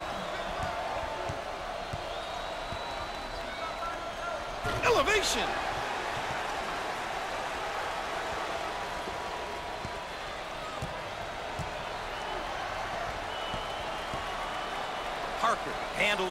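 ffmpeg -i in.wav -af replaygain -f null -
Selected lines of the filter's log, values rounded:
track_gain = +12.7 dB
track_peak = 0.125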